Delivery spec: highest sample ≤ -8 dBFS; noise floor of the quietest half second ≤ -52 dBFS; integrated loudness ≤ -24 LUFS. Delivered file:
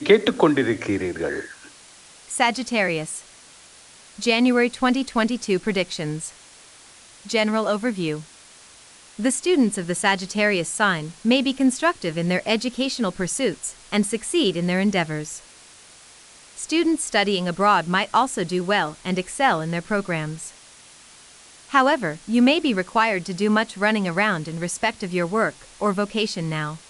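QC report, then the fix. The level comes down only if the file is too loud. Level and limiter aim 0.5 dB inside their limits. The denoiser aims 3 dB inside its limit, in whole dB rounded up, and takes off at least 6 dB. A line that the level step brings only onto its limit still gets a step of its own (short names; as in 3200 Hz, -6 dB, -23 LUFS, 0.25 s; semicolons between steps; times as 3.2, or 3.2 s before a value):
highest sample -4.5 dBFS: fail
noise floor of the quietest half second -48 dBFS: fail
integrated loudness -22.0 LUFS: fail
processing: denoiser 6 dB, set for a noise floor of -48 dBFS; gain -2.5 dB; limiter -8.5 dBFS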